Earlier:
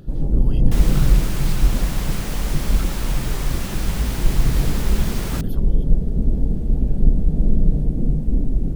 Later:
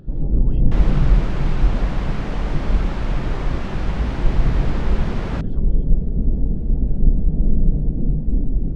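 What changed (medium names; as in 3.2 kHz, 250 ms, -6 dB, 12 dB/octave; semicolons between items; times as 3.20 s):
second sound +6.0 dB; master: add tape spacing loss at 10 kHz 33 dB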